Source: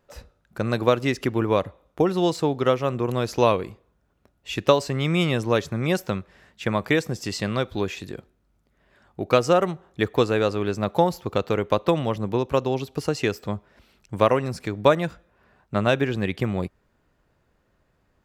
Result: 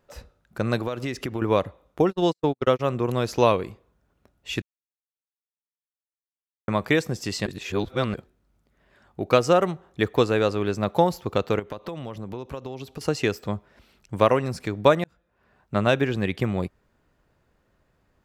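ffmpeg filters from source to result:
ffmpeg -i in.wav -filter_complex "[0:a]asettb=1/sr,asplit=3[link_01][link_02][link_03];[link_01]atrim=end=0.774[link_04];[link_02]atrim=start=0.77:end=1.42,asetpts=PTS-STARTPTS,afade=type=in:duration=0.004:curve=qsin,afade=type=out:start_time=0.646:duration=0.004:curve=qsin,acompressor=threshold=-24dB:ratio=8:attack=3.2:release=140:knee=1:detection=peak[link_05];[link_03]atrim=start=1.416[link_06];[link_04][link_05]acrossfade=duration=0.004:curve1=hsin:curve2=qsin[link_07];[link_07][link_06]acrossfade=duration=0.004:curve1=qsin:curve2=hsin,asplit=3[link_08][link_09][link_10];[link_08]afade=type=out:start_time=2.09:duration=0.02[link_11];[link_09]agate=range=-52dB:threshold=-23dB:ratio=16:release=100:detection=peak,afade=type=in:start_time=2.09:duration=0.02,afade=type=out:start_time=2.79:duration=0.02[link_12];[link_10]afade=type=in:start_time=2.79:duration=0.02[link_13];[link_11][link_12][link_13]amix=inputs=3:normalize=0,asettb=1/sr,asplit=3[link_14][link_15][link_16];[link_14]atrim=end=11.594[link_17];[link_15]atrim=start=11.59:end=13.01,asetpts=PTS-STARTPTS,afade=type=in:duration=0.004:curve=qsin,afade=type=out:start_time=1.416:duration=0.004:curve=qsin,acompressor=threshold=-31dB:ratio=5:attack=3.2:release=140:knee=1:detection=peak[link_18];[link_16]atrim=start=13.006[link_19];[link_17][link_18]acrossfade=duration=0.004:curve1=hsin:curve2=qsin[link_20];[link_20][link_19]acrossfade=duration=0.004:curve1=qsin:curve2=hsin,asplit=6[link_21][link_22][link_23][link_24][link_25][link_26];[link_21]atrim=end=4.62,asetpts=PTS-STARTPTS,afade=type=out:start_time=4.616:duration=0.004:curve=hsin[link_27];[link_22]atrim=start=4.62:end=6.68,asetpts=PTS-STARTPTS,volume=0[link_28];[link_23]atrim=start=6.68:end=7.462,asetpts=PTS-STARTPTS,afade=type=in:duration=0.004:curve=hsin[link_29];[link_24]atrim=start=7.458:end=8.142,asetpts=PTS-STARTPTS,areverse[link_30];[link_25]atrim=start=8.138:end=15.04,asetpts=PTS-STARTPTS,afade=type=out:start_time=6.898:duration=0.004:curve=hsin[link_31];[link_26]atrim=start=15.04,asetpts=PTS-STARTPTS,afade=type=in:duration=0.7[link_32];[link_27][link_28][link_29]concat=n=3:v=0:a=1[link_33];[link_33][link_30]acrossfade=duration=0.004:curve1=hsin:curve2=hsin[link_34];[link_31][link_32]concat=n=2:v=0:a=1[link_35];[link_34][link_35]acrossfade=duration=0.004:curve1=hsin:curve2=hsin" out.wav

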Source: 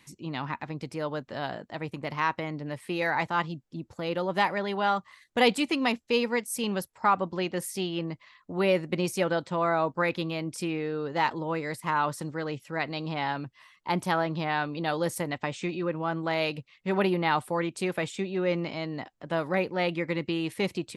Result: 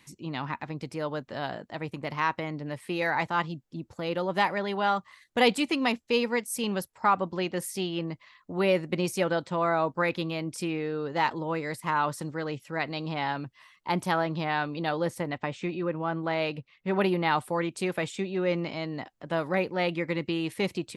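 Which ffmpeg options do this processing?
ffmpeg -i in.wav -filter_complex "[0:a]asettb=1/sr,asplit=3[link_01][link_02][link_03];[link_01]atrim=end=14.894[link_04];[link_02]atrim=start=14.89:end=16.99,asetpts=PTS-STARTPTS,afade=type=in:duration=0.004:curve=qsin,afade=type=out:start_time=2.096:duration=0.004:curve=qsin,highshelf=frequency=5200:gain=-12[link_05];[link_03]atrim=start=16.986[link_06];[link_04][link_05]acrossfade=duration=0.004:curve1=hsin:curve2=qsin[link_07];[link_07][link_06]acrossfade=duration=0.004:curve1=qsin:curve2=hsin" out.wav

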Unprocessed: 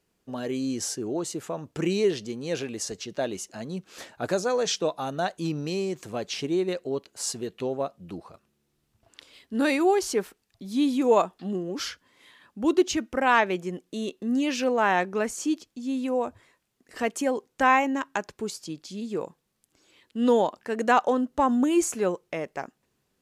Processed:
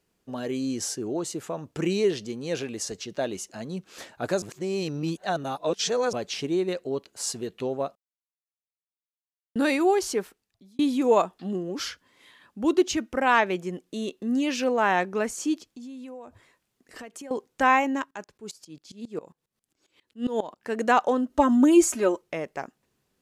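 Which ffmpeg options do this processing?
ffmpeg -i in.wav -filter_complex "[0:a]asettb=1/sr,asplit=3[link_01][link_02][link_03];[link_01]atrim=end=7.954[link_04];[link_02]atrim=start=7.95:end=9.56,asetpts=PTS-STARTPTS,afade=type=in:duration=0.004:curve=qsin,afade=type=out:start_time=1.606:duration=0.004:curve=qsin,acrusher=bits=2:mix=0:aa=0.5[link_05];[link_03]atrim=start=9.556[link_06];[link_04][link_05]acrossfade=duration=0.004:curve1=hsin:curve2=qsin[link_07];[link_07][link_06]acrossfade=duration=0.004:curve1=qsin:curve2=hsin,asettb=1/sr,asplit=3[link_08][link_09][link_10];[link_08]atrim=end=15.684[link_11];[link_09]atrim=start=15.68:end=17.31,asetpts=PTS-STARTPTS,afade=type=in:duration=0.004:curve=qsin,afade=type=out:start_time=1.626:duration=0.004:curve=qsin,acompressor=threshold=-38dB:ratio=8:attack=3.2:release=140:knee=1:detection=peak[link_12];[link_10]atrim=start=17.306[link_13];[link_11][link_12]acrossfade=duration=0.004:curve1=hsin:curve2=qsin[link_14];[link_14][link_13]acrossfade=duration=0.004:curve1=qsin:curve2=hsin,asplit=3[link_15][link_16][link_17];[link_15]afade=type=out:start_time=18.04:duration=0.02[link_18];[link_16]aeval=exprs='val(0)*pow(10,-20*if(lt(mod(-7.4*n/s,1),2*abs(-7.4)/1000),1-mod(-7.4*n/s,1)/(2*abs(-7.4)/1000),(mod(-7.4*n/s,1)-2*abs(-7.4)/1000)/(1-2*abs(-7.4)/1000))/20)':channel_layout=same,afade=type=in:start_time=18.04:duration=0.02,afade=type=out:start_time=20.63:duration=0.02[link_19];[link_17]afade=type=in:start_time=20.63:duration=0.02[link_20];[link_18][link_19][link_20]amix=inputs=3:normalize=0,asettb=1/sr,asplit=3[link_21][link_22][link_23];[link_21]atrim=end=21.294[link_24];[link_22]atrim=start=21.29:end=22.22,asetpts=PTS-STARTPTS,afade=type=in:duration=0.004:curve=qsin,afade=type=out:start_time=0.926:duration=0.004:curve=qsin,aecho=1:1:3.2:0.98,atrim=end_sample=41013[link_25];[link_23]atrim=start=22.216[link_26];[link_24][link_25]acrossfade=duration=0.004:curve1=hsin:curve2=qsin[link_27];[link_27][link_26]acrossfade=duration=0.004:curve1=qsin:curve2=hsin,asplit=4[link_28][link_29][link_30][link_31];[link_28]atrim=end=4.422[link_32];[link_29]atrim=start=4.418:end=6.132,asetpts=PTS-STARTPTS,areverse[link_33];[link_30]atrim=start=6.128:end=10.79,asetpts=PTS-STARTPTS,afade=type=out:start_time=3.942:duration=0.72[link_34];[link_31]atrim=start=10.79,asetpts=PTS-STARTPTS,afade=type=in:duration=0.004:curve=hsin[link_35];[link_32][link_33]acrossfade=duration=0.004:curve1=hsin:curve2=hsin[link_36];[link_34][link_35]concat=n=2:v=0:a=1[link_37];[link_36][link_37]acrossfade=duration=0.004:curve1=hsin:curve2=hsin" out.wav

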